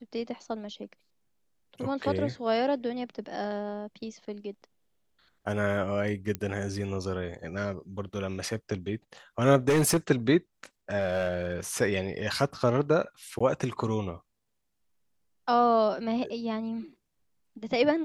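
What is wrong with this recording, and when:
6.35 s: pop -17 dBFS
9.68–9.97 s: clipped -19.5 dBFS
10.98–11.55 s: clipped -23 dBFS
13.39–13.40 s: dropout 15 ms

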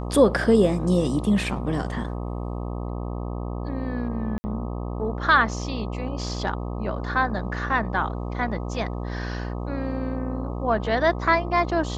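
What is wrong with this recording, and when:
buzz 60 Hz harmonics 21 -30 dBFS
4.38–4.44 s: dropout 60 ms

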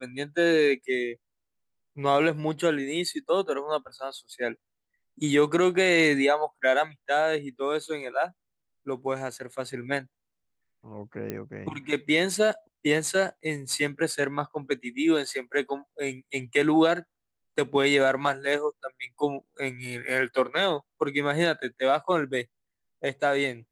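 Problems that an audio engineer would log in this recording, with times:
11.30 s: pop -18 dBFS

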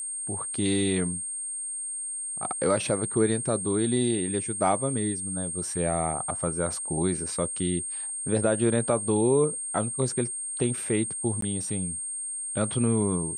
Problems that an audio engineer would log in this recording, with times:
whine 8.6 kHz -31 dBFS
11.41–11.42 s: dropout 13 ms

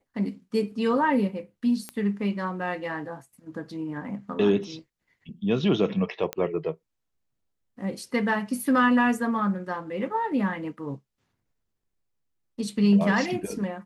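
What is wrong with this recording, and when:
1.89 s: pop -19 dBFS
6.33 s: pop -14 dBFS

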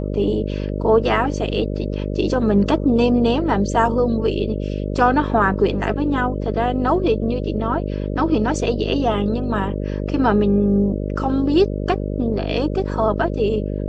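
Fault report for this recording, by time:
buzz 50 Hz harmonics 12 -24 dBFS

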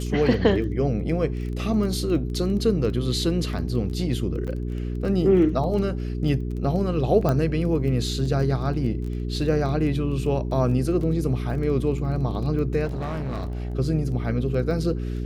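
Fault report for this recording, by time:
crackle 14 per s -32 dBFS
hum 60 Hz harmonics 7 -28 dBFS
4.47–4.48 s: dropout 7.8 ms
7.29 s: pop -12 dBFS
12.85–13.75 s: clipped -25.5 dBFS

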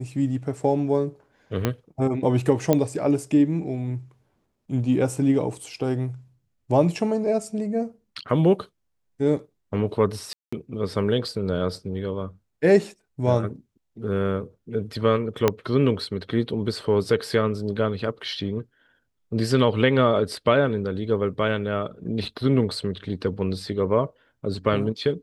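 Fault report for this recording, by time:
1.65 s: pop -8 dBFS
2.73 s: pop -7 dBFS
10.33–10.53 s: dropout 195 ms
15.48 s: pop -5 dBFS

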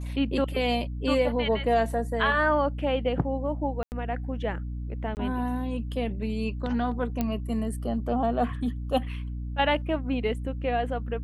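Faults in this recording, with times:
hum 60 Hz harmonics 5 -33 dBFS
3.83–3.92 s: dropout 89 ms
5.15–5.17 s: dropout 19 ms
7.21 s: pop -14 dBFS

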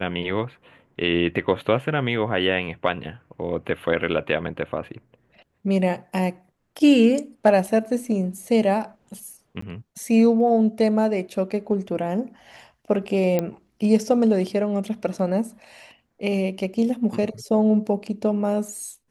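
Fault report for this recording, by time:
9.61–9.62 s: dropout 14 ms
13.39 s: pop -10 dBFS

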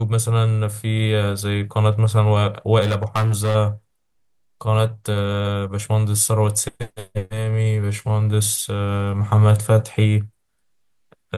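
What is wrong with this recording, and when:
2.81–3.56 s: clipped -15 dBFS

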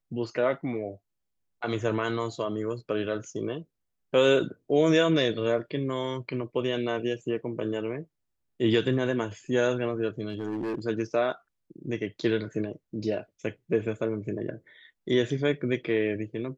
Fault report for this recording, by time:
10.29–10.79 s: clipped -27 dBFS

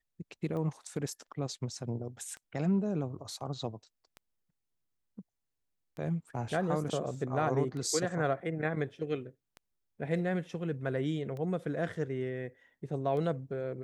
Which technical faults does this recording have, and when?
tick 33 1/3 rpm -30 dBFS

